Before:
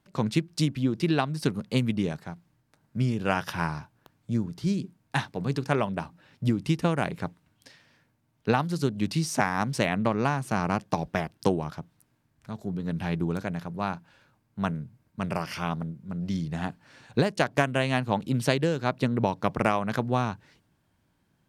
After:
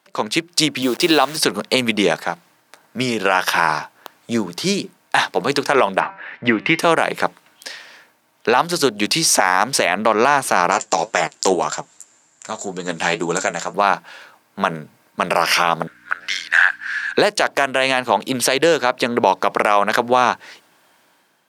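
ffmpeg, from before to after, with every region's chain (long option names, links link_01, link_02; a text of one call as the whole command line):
ffmpeg -i in.wav -filter_complex "[0:a]asettb=1/sr,asplit=3[link_01][link_02][link_03];[link_01]atrim=end=0.824[link_04];[link_02]atrim=start=0.82:end=1.37,asetpts=PTS-STARTPTS,afade=type=in:duration=0.004:curve=qsin,afade=type=out:start_time=0.546:duration=0.004:curve=qsin,highpass=frequency=270:poles=1,equalizer=frequency=1900:width_type=o:width=1.1:gain=-6,acrusher=bits=9:dc=4:mix=0:aa=0.000001[link_05];[link_03]atrim=start=1.366[link_06];[link_04][link_05]acrossfade=duration=0.004:curve1=hsin:curve2=qsin[link_07];[link_07][link_06]acrossfade=duration=0.004:curve1=qsin:curve2=hsin,asettb=1/sr,asplit=3[link_08][link_09][link_10];[link_08]atrim=end=6.004[link_11];[link_09]atrim=start=6:end=6.79,asetpts=PTS-STARTPTS,afade=type=in:duration=0.004:curve=qsin,afade=type=out:start_time=0.786:duration=0.004:curve=qsin,lowpass=frequency=2000:width_type=q:width=3.1,bandreject=frequency=193.8:width_type=h:width=4,bandreject=frequency=387.6:width_type=h:width=4,bandreject=frequency=581.4:width_type=h:width=4,bandreject=frequency=775.2:width_type=h:width=4,bandreject=frequency=969:width_type=h:width=4,bandreject=frequency=1162.8:width_type=h:width=4,bandreject=frequency=1356.6:width_type=h:width=4,bandreject=frequency=1550.4:width_type=h:width=4,bandreject=frequency=1744.2:width_type=h:width=4,bandreject=frequency=1938:width_type=h:width=4,bandreject=frequency=2131.8:width_type=h:width=4,bandreject=frequency=2325.6:width_type=h:width=4,bandreject=frequency=2519.4:width_type=h:width=4,bandreject=frequency=2713.2:width_type=h:width=4,bandreject=frequency=2907:width_type=h:width=4,bandreject=frequency=3100.8:width_type=h:width=4,bandreject=frequency=3294.6:width_type=h:width=4,bandreject=frequency=3488.4:width_type=h:width=4,bandreject=frequency=3682.2:width_type=h:width=4,bandreject=frequency=3876:width_type=h:width=4,bandreject=frequency=4069.8:width_type=h:width=4,bandreject=frequency=4263.6:width_type=h:width=4,bandreject=frequency=4457.4:width_type=h:width=4,bandreject=frequency=4651.2:width_type=h:width=4,bandreject=frequency=4845:width_type=h:width=4,bandreject=frequency=5038.8:width_type=h:width=4,bandreject=frequency=5232.6:width_type=h:width=4,bandreject=frequency=5426.4:width_type=h:width=4,bandreject=frequency=5620.2:width_type=h:width=4,bandreject=frequency=5814:width_type=h:width=4,bandreject=frequency=6007.8:width_type=h:width=4[link_12];[link_10]atrim=start=6.786[link_13];[link_11][link_12]acrossfade=duration=0.004:curve1=hsin:curve2=qsin[link_14];[link_14][link_13]acrossfade=duration=0.004:curve1=qsin:curve2=hsin,asettb=1/sr,asplit=3[link_15][link_16][link_17];[link_15]atrim=end=10.714[link_18];[link_16]atrim=start=10.71:end=13.74,asetpts=PTS-STARTPTS,afade=type=in:duration=0.004:curve=qsin,afade=type=out:start_time=3.026:duration=0.004:curve=qsin,flanger=delay=5.9:depth=5.1:regen=56:speed=1.9:shape=triangular,lowpass=frequency=7300:width_type=q:width=16,asoftclip=type=hard:threshold=-12dB[link_19];[link_17]atrim=start=13.736[link_20];[link_18][link_19]acrossfade=duration=0.004:curve1=hsin:curve2=qsin[link_21];[link_21][link_20]acrossfade=duration=0.004:curve1=qsin:curve2=hsin,asettb=1/sr,asplit=3[link_22][link_23][link_24];[link_22]atrim=end=15.874[link_25];[link_23]atrim=start=15.87:end=17.18,asetpts=PTS-STARTPTS,afade=type=in:duration=0.004:curve=qsin,afade=type=out:start_time=1.306:duration=0.004:curve=qsin,highpass=frequency=1600:width_type=q:width=7.2,highshelf=frequency=9000:gain=-6.5,aeval=exprs='val(0)+0.00158*(sin(2*PI*60*n/s)+sin(2*PI*2*60*n/s)/2+sin(2*PI*3*60*n/s)/3+sin(2*PI*4*60*n/s)/4+sin(2*PI*5*60*n/s)/5)':channel_layout=same[link_26];[link_24]atrim=start=17.176[link_27];[link_25][link_26]acrossfade=duration=0.004:curve1=hsin:curve2=qsin[link_28];[link_28][link_27]acrossfade=duration=0.004:curve1=qsin:curve2=hsin,highpass=530,dynaudnorm=framelen=160:gausssize=7:maxgain=9.5dB,alimiter=level_in=13dB:limit=-1dB:release=50:level=0:latency=1,volume=-1dB" out.wav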